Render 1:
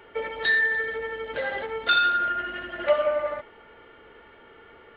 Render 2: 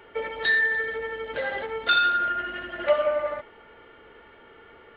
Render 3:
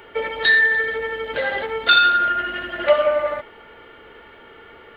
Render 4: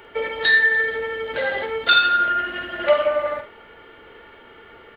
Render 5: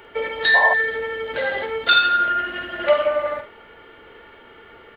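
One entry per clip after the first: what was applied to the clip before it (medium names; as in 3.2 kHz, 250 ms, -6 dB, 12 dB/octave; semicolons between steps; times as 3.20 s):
no audible change
treble shelf 4 kHz +7.5 dB; trim +5.5 dB
doubling 49 ms -9 dB; trim -1.5 dB
painted sound noise, 0.54–0.74 s, 530–1100 Hz -20 dBFS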